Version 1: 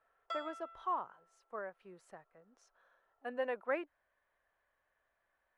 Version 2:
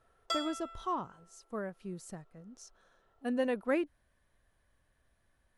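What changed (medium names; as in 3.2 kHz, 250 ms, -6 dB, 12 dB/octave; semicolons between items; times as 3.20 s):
background +4.5 dB; master: remove three-band isolator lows -21 dB, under 480 Hz, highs -19 dB, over 2.6 kHz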